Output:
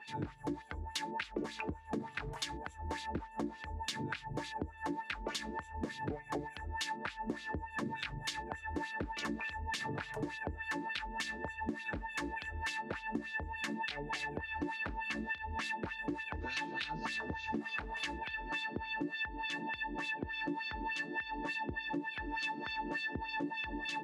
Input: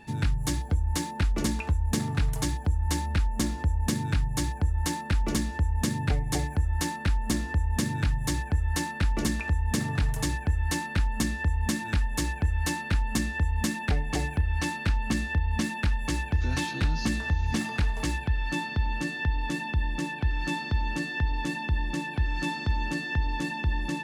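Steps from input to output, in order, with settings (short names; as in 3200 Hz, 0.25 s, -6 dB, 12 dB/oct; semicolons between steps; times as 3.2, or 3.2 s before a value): wah 3.4 Hz 320–3500 Hz, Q 2.1; compressor 6:1, threshold -41 dBFS, peak gain reduction 12.5 dB; gain +6 dB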